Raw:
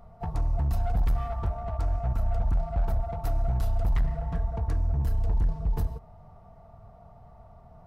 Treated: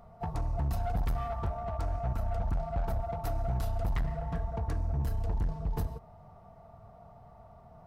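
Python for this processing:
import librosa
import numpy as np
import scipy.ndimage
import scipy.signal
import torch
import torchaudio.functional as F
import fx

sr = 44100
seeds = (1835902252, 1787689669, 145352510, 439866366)

y = fx.low_shelf(x, sr, hz=75.0, db=-9.0)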